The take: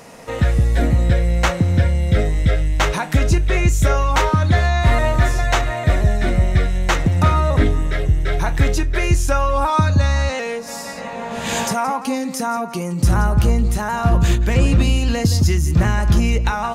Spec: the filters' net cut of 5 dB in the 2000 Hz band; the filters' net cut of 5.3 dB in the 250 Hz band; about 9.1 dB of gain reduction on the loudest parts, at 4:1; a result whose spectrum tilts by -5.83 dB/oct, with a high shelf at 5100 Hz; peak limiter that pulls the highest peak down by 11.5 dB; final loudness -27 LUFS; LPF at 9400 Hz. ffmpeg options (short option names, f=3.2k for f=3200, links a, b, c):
-af "lowpass=9.4k,equalizer=f=250:t=o:g=-8,equalizer=f=2k:t=o:g=-5,highshelf=f=5.1k:g=-7.5,acompressor=threshold=-22dB:ratio=4,volume=5dB,alimiter=limit=-18.5dB:level=0:latency=1"